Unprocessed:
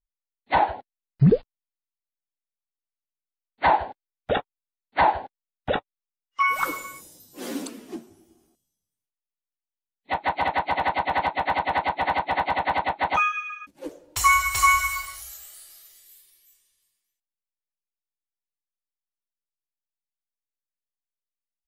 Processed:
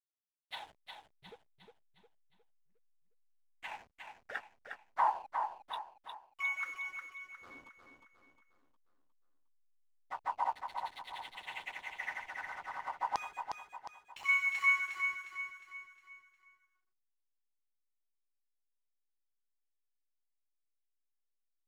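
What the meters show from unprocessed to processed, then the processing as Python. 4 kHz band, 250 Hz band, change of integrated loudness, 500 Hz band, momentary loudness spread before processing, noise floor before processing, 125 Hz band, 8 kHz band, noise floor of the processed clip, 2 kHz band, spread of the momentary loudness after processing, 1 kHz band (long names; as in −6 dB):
−14.5 dB, below −30 dB, −13.0 dB, −24.5 dB, 20 LU, below −85 dBFS, below −40 dB, −25.5 dB, −82 dBFS, −9.0 dB, 21 LU, −15.5 dB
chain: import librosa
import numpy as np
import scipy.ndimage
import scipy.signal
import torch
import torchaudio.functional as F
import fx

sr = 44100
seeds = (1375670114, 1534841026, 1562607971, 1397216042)

y = fx.filter_lfo_bandpass(x, sr, shape='saw_down', hz=0.38, low_hz=930.0, high_hz=5300.0, q=4.5)
y = fx.tremolo_random(y, sr, seeds[0], hz=3.5, depth_pct=55)
y = fx.backlash(y, sr, play_db=-45.5)
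y = fx.echo_feedback(y, sr, ms=358, feedback_pct=45, wet_db=-6)
y = y * librosa.db_to_amplitude(-3.0)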